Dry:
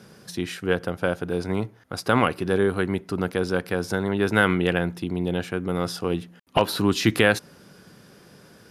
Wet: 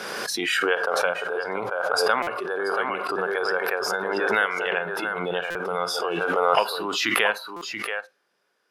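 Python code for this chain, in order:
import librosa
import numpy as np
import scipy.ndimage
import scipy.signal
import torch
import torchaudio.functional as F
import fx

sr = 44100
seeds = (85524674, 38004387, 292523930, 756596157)

p1 = fx.high_shelf(x, sr, hz=3800.0, db=-10.5)
p2 = fx.rider(p1, sr, range_db=5, speed_s=0.5)
p3 = scipy.signal.sosfilt(scipy.signal.butter(2, 470.0, 'highpass', fs=sr, output='sos'), p2)
p4 = fx.tilt_shelf(p3, sr, db=-4.5, hz=630.0)
p5 = p4 + fx.echo_single(p4, sr, ms=681, db=-6.5, dry=0)
p6 = fx.rev_schroeder(p5, sr, rt60_s=0.48, comb_ms=31, drr_db=18.0)
p7 = fx.noise_reduce_blind(p6, sr, reduce_db=14)
p8 = fx.buffer_glitch(p7, sr, at_s=(2.22, 5.5, 7.56), block=256, repeats=8)
y = fx.pre_swell(p8, sr, db_per_s=21.0)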